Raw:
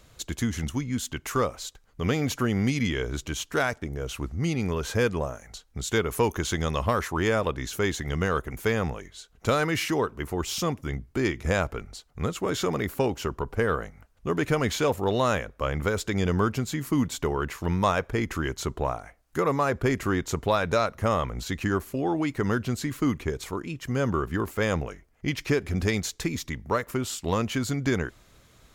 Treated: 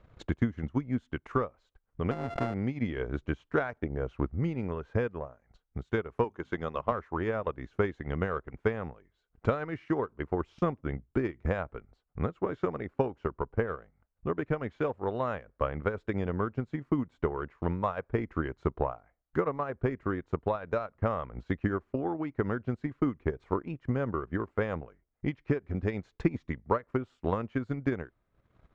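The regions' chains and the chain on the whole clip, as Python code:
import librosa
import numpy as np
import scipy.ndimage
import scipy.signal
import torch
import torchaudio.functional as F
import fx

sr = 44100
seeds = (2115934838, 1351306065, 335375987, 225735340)

y = fx.chain(x, sr, fx.sample_sort(block=64),
    fx.high_shelf(hz=5900.0, db=8.0),
    fx.pre_swell(db_per_s=24.0), at=(2.11, 2.54))
y = fx.chain(y, sr, fx.highpass(hz=190.0, slope=6),
    fx.hum_notches(base_hz=50, count=5), at=(6.24, 6.92))
y = scipy.signal.sosfilt(scipy.signal.butter(2, 1600.0, 'lowpass', fs=sr, output='sos'), y)
y = fx.transient(y, sr, attack_db=9, sustain_db=-10)
y = fx.rider(y, sr, range_db=10, speed_s=0.5)
y = F.gain(torch.from_numpy(y), -8.0).numpy()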